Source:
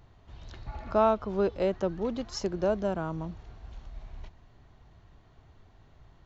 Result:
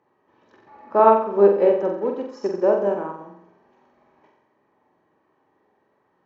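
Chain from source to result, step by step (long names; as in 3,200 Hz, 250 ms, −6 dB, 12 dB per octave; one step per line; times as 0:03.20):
high-pass filter 300 Hz 12 dB per octave
high-shelf EQ 2,400 Hz −11.5 dB
notch comb filter 700 Hz
flutter between parallel walls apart 7.7 metres, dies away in 0.77 s
convolution reverb RT60 1.1 s, pre-delay 3 ms, DRR 22.5 dB
expander for the loud parts 1.5 to 1, over −37 dBFS
level +4 dB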